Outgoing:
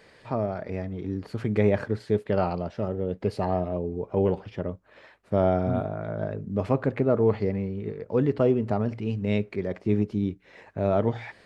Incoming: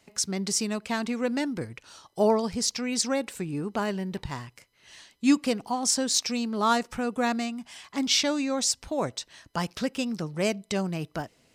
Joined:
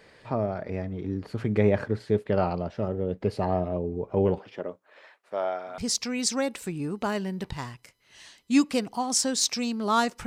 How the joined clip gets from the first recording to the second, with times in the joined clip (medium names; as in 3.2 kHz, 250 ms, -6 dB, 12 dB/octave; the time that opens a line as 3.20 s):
outgoing
4.38–5.78 s: high-pass 260 Hz -> 1.1 kHz
5.78 s: go over to incoming from 2.51 s